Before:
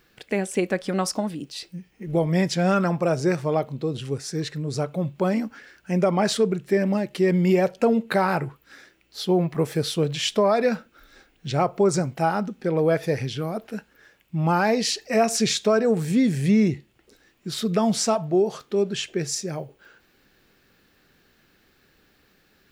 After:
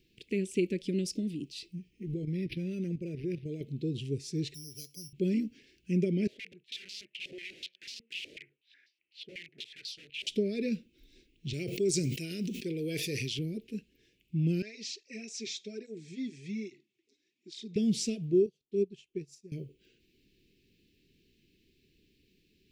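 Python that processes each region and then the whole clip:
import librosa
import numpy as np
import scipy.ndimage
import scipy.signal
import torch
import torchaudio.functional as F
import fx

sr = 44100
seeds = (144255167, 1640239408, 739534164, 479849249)

y = fx.chain(x, sr, fx.low_shelf(hz=370.0, db=-2.5),
    fx.level_steps(step_db=9),
    fx.resample_linear(factor=6), at=(2.14, 3.61))
y = fx.chain(y, sr, fx.pre_emphasis(coefficient=0.9),
    fx.resample_bad(factor=8, down='filtered', up='zero_stuff'),
    fx.band_squash(depth_pct=70), at=(4.54, 5.13))
y = fx.chain(y, sr, fx.peak_eq(hz=1600.0, db=12.0, octaves=1.9),
    fx.overflow_wrap(gain_db=17.5),
    fx.filter_held_bandpass(hz=8.1, low_hz=620.0, high_hz=4900.0), at=(6.27, 10.27))
y = fx.chain(y, sr, fx.tilt_eq(slope=3.0),
    fx.sustainer(db_per_s=42.0), at=(11.53, 13.39))
y = fx.chain(y, sr, fx.cabinet(low_hz=450.0, low_slope=12, high_hz=6800.0, hz=(480.0, 2900.0, 4400.0), db=(-10, -9, -4)),
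    fx.flanger_cancel(hz=1.2, depth_ms=6.1), at=(14.62, 17.76))
y = fx.chain(y, sr, fx.dynamic_eq(hz=3900.0, q=0.93, threshold_db=-40.0, ratio=4.0, max_db=-4),
    fx.upward_expand(threshold_db=-38.0, expansion=2.5), at=(18.46, 19.52))
y = scipy.signal.sosfilt(scipy.signal.ellip(3, 1.0, 70, [390.0, 2500.0], 'bandstop', fs=sr, output='sos'), y)
y = fx.high_shelf(y, sr, hz=6500.0, db=-11.0)
y = y * 10.0 ** (-4.0 / 20.0)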